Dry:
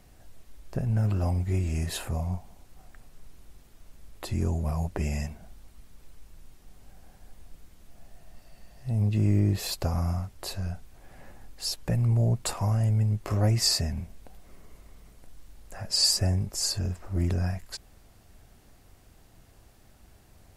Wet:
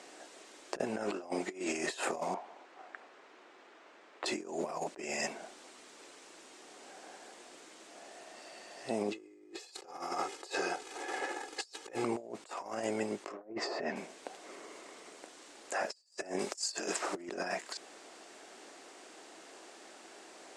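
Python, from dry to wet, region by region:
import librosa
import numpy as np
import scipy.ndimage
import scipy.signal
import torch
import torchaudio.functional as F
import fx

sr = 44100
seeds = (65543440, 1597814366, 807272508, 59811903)

y = fx.chain(x, sr, fx.lowpass(hz=1700.0, slope=12),
    fx.tilt_eq(slope=3.0), at=(2.34, 4.26))
y = fx.chain(y, sr, fx.law_mismatch(coded='mu'),
    fx.comb(ms=2.4, depth=0.74), at=(9.12, 12.04))
y = fx.chain(y, sr, fx.highpass(hz=60.0, slope=6),
    fx.env_lowpass_down(base_hz=680.0, full_db=-20.0), at=(13.22, 13.96))
y = fx.chain(y, sr, fx.tilt_eq(slope=2.0),
    fx.over_compress(threshold_db=-30.0, ratio=-0.5), at=(16.39, 17.15))
y = scipy.signal.sosfilt(scipy.signal.ellip(3, 1.0, 50, [330.0, 8100.0], 'bandpass', fs=sr, output='sos'), y)
y = fx.over_compress(y, sr, threshold_db=-43.0, ratio=-0.5)
y = y * 10.0 ** (4.5 / 20.0)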